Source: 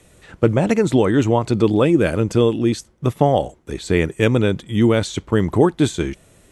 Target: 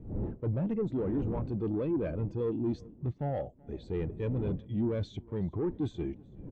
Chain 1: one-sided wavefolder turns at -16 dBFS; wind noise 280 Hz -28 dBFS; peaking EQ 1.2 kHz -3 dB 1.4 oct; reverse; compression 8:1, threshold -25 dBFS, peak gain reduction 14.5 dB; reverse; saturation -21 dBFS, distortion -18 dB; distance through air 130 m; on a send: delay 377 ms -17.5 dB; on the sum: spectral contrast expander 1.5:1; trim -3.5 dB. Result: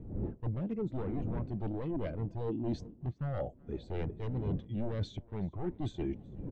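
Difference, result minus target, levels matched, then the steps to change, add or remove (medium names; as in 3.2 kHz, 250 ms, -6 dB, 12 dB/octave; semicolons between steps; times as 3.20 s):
one-sided wavefolder: distortion +22 dB; compression: peak gain reduction +8 dB
change: one-sided wavefolder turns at -6 dBFS; change: compression 8:1, threshold -15 dBFS, peak gain reduction 6 dB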